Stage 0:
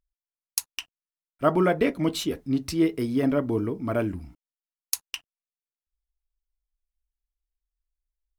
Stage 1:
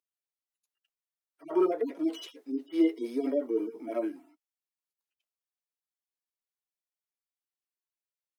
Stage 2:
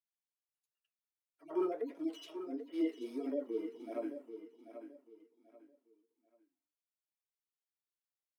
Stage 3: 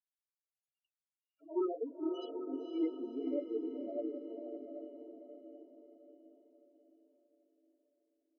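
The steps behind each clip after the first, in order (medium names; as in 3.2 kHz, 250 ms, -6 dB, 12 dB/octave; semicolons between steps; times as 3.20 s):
harmonic-percussive separation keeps harmonic; steep high-pass 310 Hz 36 dB/octave
flange 1.5 Hz, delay 6.8 ms, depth 9.1 ms, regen -65%; on a send: feedback delay 787 ms, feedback 28%, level -10.5 dB; on the sum: trim -4.5 dB
loudest bins only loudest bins 8; echo that smears into a reverb 519 ms, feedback 50%, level -6 dB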